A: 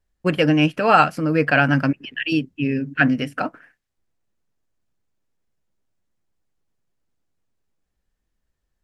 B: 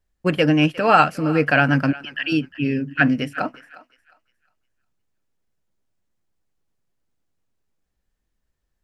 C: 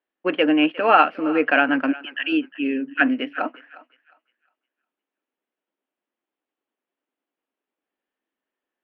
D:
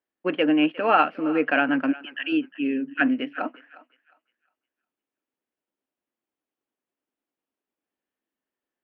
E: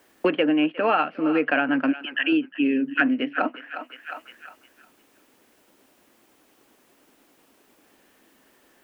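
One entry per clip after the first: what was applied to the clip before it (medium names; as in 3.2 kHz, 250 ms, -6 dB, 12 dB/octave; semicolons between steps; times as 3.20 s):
thinning echo 357 ms, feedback 29%, high-pass 890 Hz, level -17 dB
elliptic band-pass 270–3100 Hz, stop band 40 dB
peaking EQ 95 Hz +10 dB 2.2 oct; trim -4.5 dB
three bands compressed up and down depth 100%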